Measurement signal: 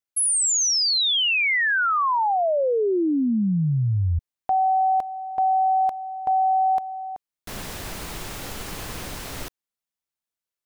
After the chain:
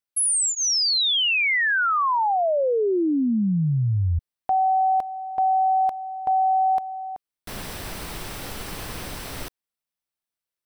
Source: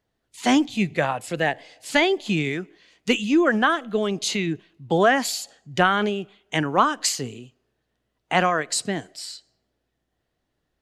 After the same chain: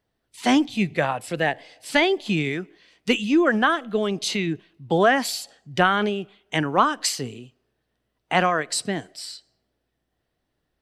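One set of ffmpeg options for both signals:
-af "bandreject=f=6.8k:w=7.2"

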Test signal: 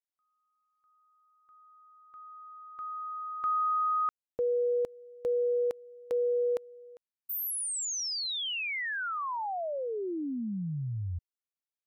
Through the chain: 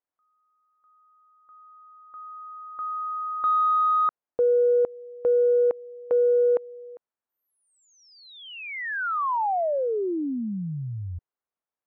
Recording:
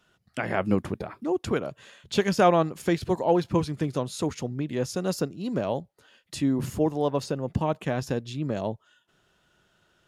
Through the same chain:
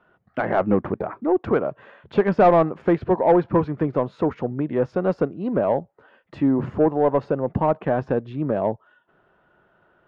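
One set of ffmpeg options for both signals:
-filter_complex "[0:a]volume=12dB,asoftclip=hard,volume=-12dB,lowpass=1.5k,asplit=2[a][b];[b]highpass=f=720:p=1,volume=13dB,asoftclip=type=tanh:threshold=-11.5dB[c];[a][c]amix=inputs=2:normalize=0,lowpass=f=1.1k:p=1,volume=-6dB,volume=5.5dB"

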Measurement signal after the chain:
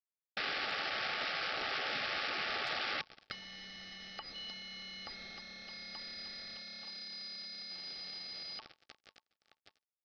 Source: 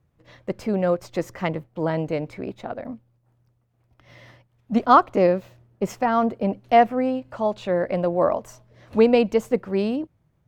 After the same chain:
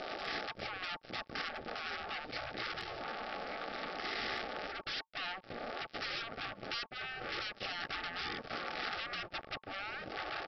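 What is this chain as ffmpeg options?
-af "aeval=exprs='val(0)+0.5*0.0668*sgn(val(0))':c=same,lowpass=f=1.6k:p=1,aecho=1:1:1188|2376|3564:0.112|0.0415|0.0154,acompressor=threshold=-28dB:ratio=4,equalizer=f=110:w=6.8:g=-7.5,aresample=11025,acrusher=bits=4:mix=0:aa=0.5,aresample=44100,afftfilt=real='re*lt(hypot(re,im),0.0562)':imag='im*lt(hypot(re,im),0.0562)':win_size=1024:overlap=0.75,agate=range=-52dB:threshold=-57dB:ratio=16:detection=peak,asuperstop=centerf=990:order=20:qfactor=5.4,lowshelf=f=170:g=-7.5,volume=1dB" -ar 48000 -c:a aac -b:a 96k

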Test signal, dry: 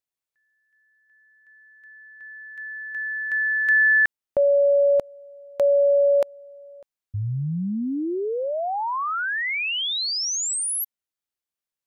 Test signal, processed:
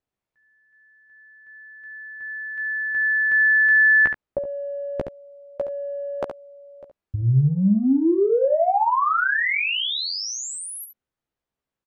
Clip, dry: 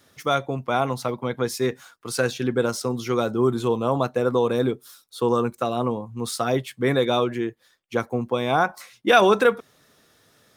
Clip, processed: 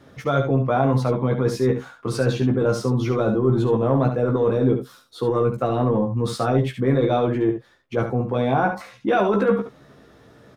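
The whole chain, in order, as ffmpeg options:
-filter_complex "[0:a]lowpass=f=1.1k:p=1,lowshelf=f=430:g=4.5,areverse,acompressor=threshold=-28dB:ratio=12:attack=8.7:release=22:knee=6:detection=rms,areverse,asplit=2[a][b];[b]adelay=15,volume=-4.5dB[c];[a][c]amix=inputs=2:normalize=0,aecho=1:1:70:0.398,volume=8.5dB"

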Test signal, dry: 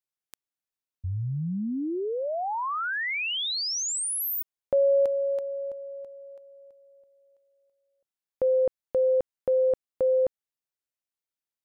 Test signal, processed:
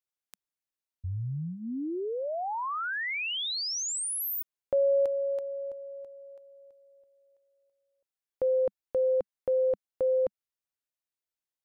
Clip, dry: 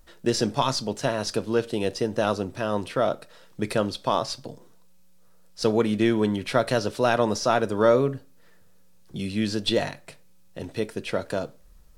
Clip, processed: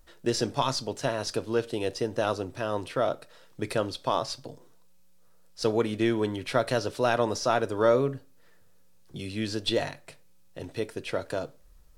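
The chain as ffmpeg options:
-af "equalizer=f=200:w=6.7:g=-10.5,volume=-3dB"

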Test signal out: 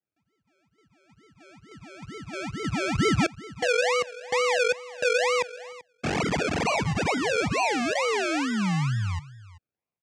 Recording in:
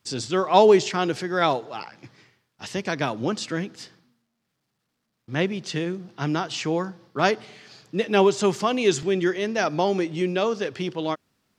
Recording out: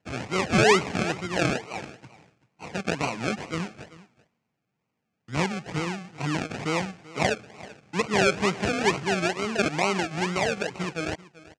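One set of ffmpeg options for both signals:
-filter_complex "[0:a]acrusher=samples=36:mix=1:aa=0.000001:lfo=1:lforange=21.6:lforate=2.2,asoftclip=type=tanh:threshold=-8dB,highpass=110,equalizer=f=250:t=q:w=4:g=-4,equalizer=f=360:t=q:w=4:g=-6,equalizer=f=570:t=q:w=4:g=-4,equalizer=f=2.4k:t=q:w=4:g=6,equalizer=f=3.7k:t=q:w=4:g=-4,lowpass=f=7.5k:w=0.5412,lowpass=f=7.5k:w=1.3066,asplit=2[a][b];[b]aecho=0:1:386:0.112[c];[a][c]amix=inputs=2:normalize=0"

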